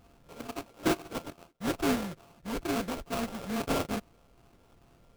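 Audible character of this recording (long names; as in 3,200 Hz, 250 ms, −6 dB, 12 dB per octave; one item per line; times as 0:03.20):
a buzz of ramps at a fixed pitch in blocks of 64 samples
phaser sweep stages 6, 2.3 Hz, lowest notch 550–1,500 Hz
aliases and images of a low sample rate 1,900 Hz, jitter 20%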